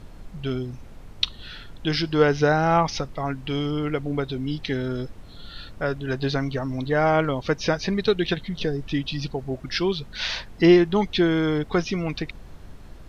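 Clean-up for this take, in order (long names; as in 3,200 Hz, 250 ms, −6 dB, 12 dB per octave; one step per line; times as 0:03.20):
hum removal 52.3 Hz, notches 4
noise reduction from a noise print 27 dB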